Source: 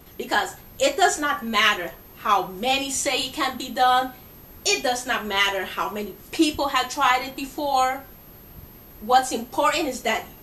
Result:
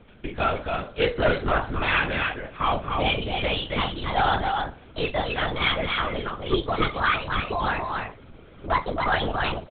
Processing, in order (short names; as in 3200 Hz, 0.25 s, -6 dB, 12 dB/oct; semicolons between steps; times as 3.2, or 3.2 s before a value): speed glide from 79% -> 136%; notch comb 920 Hz; soft clip -15 dBFS, distortion -15 dB; on a send: echo 0.275 s -4 dB; on the sum: LPC vocoder at 8 kHz whisper